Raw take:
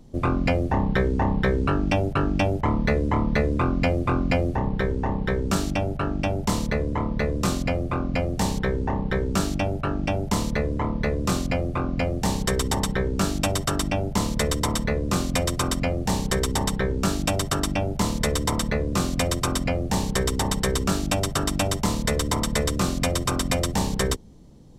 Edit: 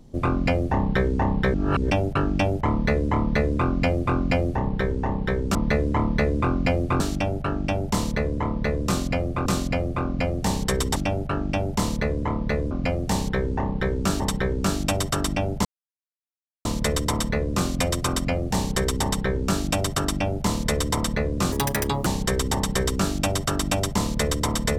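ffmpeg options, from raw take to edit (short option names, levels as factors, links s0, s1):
-filter_complex "[0:a]asplit=12[s0][s1][s2][s3][s4][s5][s6][s7][s8][s9][s10][s11];[s0]atrim=end=1.542[s12];[s1]atrim=start=1.538:end=1.902,asetpts=PTS-STARTPTS,areverse[s13];[s2]atrim=start=1.898:end=5.552[s14];[s3]atrim=start=2.718:end=4.172[s15];[s4]atrim=start=5.548:end=8.012[s16];[s5]atrim=start=11.248:end=12.752[s17];[s6]atrim=start=9.498:end=11.252[s18];[s7]atrim=start=8.008:end=9.502[s19];[s8]atrim=start=12.748:end=14.2,asetpts=PTS-STARTPTS,afade=t=out:st=1.448:d=0.004:c=hsin,apad=pad_dur=1[s20];[s9]atrim=start=14.2:end=19.074,asetpts=PTS-STARTPTS,afade=t=in:d=0.004:c=hsin[s21];[s10]atrim=start=19.07:end=19.94,asetpts=PTS-STARTPTS,asetrate=71001,aresample=44100,atrim=end_sample=23830,asetpts=PTS-STARTPTS[s22];[s11]atrim=start=19.936[s23];[s12][s13]acrossfade=d=0.004:c1=hsin:c2=hsin[s24];[s24][s14]acrossfade=d=0.004:c1=hsin:c2=hsin[s25];[s25][s15]acrossfade=d=0.004:c1=hsin:c2=hsin[s26];[s26][s16]acrossfade=d=0.004:c1=hsin:c2=hsin[s27];[s27][s17]acrossfade=d=0.004:c1=hsin:c2=hsin[s28];[s28][s18]acrossfade=d=0.004:c1=hsin:c2=hsin[s29];[s29][s19]acrossfade=d=0.004:c1=hsin:c2=hsin[s30];[s20][s21]concat=n=2:v=0:a=1[s31];[s30][s31]acrossfade=d=0.004:c1=hsin:c2=hsin[s32];[s32][s22]acrossfade=d=0.004:c1=hsin:c2=hsin[s33];[s33][s23]acrossfade=d=0.004:c1=hsin:c2=hsin"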